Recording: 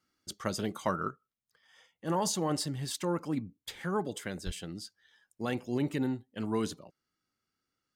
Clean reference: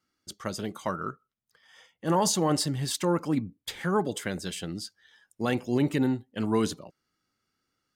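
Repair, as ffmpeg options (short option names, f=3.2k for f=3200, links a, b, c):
-filter_complex "[0:a]asplit=3[a][b][c];[a]afade=t=out:st=4.45:d=0.02[d];[b]highpass=f=140:w=0.5412,highpass=f=140:w=1.3066,afade=t=in:st=4.45:d=0.02,afade=t=out:st=4.57:d=0.02[e];[c]afade=t=in:st=4.57:d=0.02[f];[d][e][f]amix=inputs=3:normalize=0,asetnsamples=n=441:p=0,asendcmd='1.08 volume volume 6dB',volume=0dB"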